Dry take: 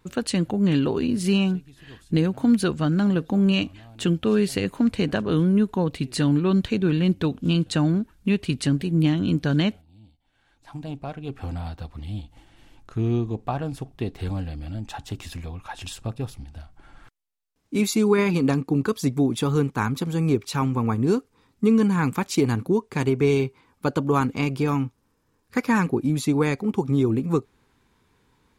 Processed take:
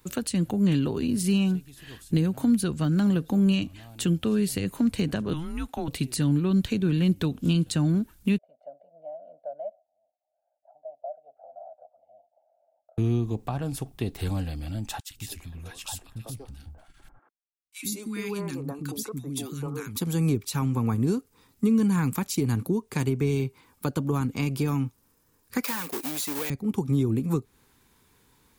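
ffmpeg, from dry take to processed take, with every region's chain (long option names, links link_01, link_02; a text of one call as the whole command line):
ffmpeg -i in.wav -filter_complex "[0:a]asettb=1/sr,asplit=3[link_01][link_02][link_03];[link_01]atrim=end=5.334[link_04];[link_02]atrim=start=5.33:end=5.88,asetpts=PTS-STARTPTS,afade=type=in:duration=0.004:curve=qsin,afade=type=out:start_time=0.546:duration=0.004:curve=qsin,highpass=490,afreqshift=-160,highshelf=frequency=6100:gain=-8[link_05];[link_03]atrim=start=5.876[link_06];[link_04][link_05]acrossfade=duration=0.004:curve1=hsin:curve2=qsin[link_07];[link_07][link_06]acrossfade=duration=0.004:curve1=qsin:curve2=hsin,asettb=1/sr,asplit=3[link_08][link_09][link_10];[link_08]atrim=end=8.384[link_11];[link_09]atrim=start=8.38:end=12.98,asetpts=PTS-STARTPTS,afade=type=in:duration=0.004:curve=qsin,afade=type=out:start_time=4.596:duration=0.004:curve=qsin,asuperpass=centerf=630:order=4:qfactor=5.4,aecho=1:1:1.4:0.94,atrim=end_sample=202860[link_12];[link_10]atrim=start=12.976[link_13];[link_11][link_12]acrossfade=duration=0.004:curve1=hsin:curve2=qsin[link_14];[link_14][link_13]acrossfade=duration=0.004:curve1=qsin:curve2=hsin,asettb=1/sr,asplit=3[link_15][link_16][link_17];[link_15]atrim=end=15.004[link_18];[link_16]atrim=start=15:end=19.96,asetpts=PTS-STARTPTS,afade=type=in:duration=0.004:curve=qsin,afade=type=out:start_time=4.956:duration=0.004:curve=qsin,acompressor=threshold=-44dB:ratio=1.5:attack=3.2:release=140:knee=1:detection=peak,agate=range=-33dB:threshold=-44dB:ratio=3:release=100:detection=peak,acrossover=split=300|1400[link_19][link_20][link_21];[link_19]adelay=100[link_22];[link_20]adelay=200[link_23];[link_22][link_23][link_21]amix=inputs=3:normalize=0,atrim=end_sample=218736[link_24];[link_17]atrim=start=19.956[link_25];[link_18][link_24]acrossfade=duration=0.004:curve1=hsin:curve2=qsin[link_26];[link_26][link_25]acrossfade=duration=0.004:curve1=qsin:curve2=hsin,asettb=1/sr,asplit=3[link_27][link_28][link_29];[link_27]atrim=end=25.644[link_30];[link_28]atrim=start=25.64:end=26.5,asetpts=PTS-STARTPTS,afade=type=in:duration=0.004:curve=qsin,afade=type=out:start_time=0.856:duration=0.004:curve=qsin,asplit=2[link_31][link_32];[link_32]highpass=frequency=720:poles=1,volume=23dB,asoftclip=type=tanh:threshold=-9dB[link_33];[link_31][link_33]amix=inputs=2:normalize=0,lowpass=frequency=5300:poles=1,volume=-6dB,acrusher=bits=2:mode=log:mix=0:aa=0.000001,highpass=520[link_34];[link_29]atrim=start=26.496[link_35];[link_30][link_34]acrossfade=duration=0.004:curve1=hsin:curve2=qsin[link_36];[link_36][link_35]acrossfade=duration=0.004:curve1=qsin:curve2=hsin,aemphasis=mode=production:type=50fm,acrossover=split=250[link_37][link_38];[link_38]acompressor=threshold=-30dB:ratio=6[link_39];[link_37][link_39]amix=inputs=2:normalize=0" out.wav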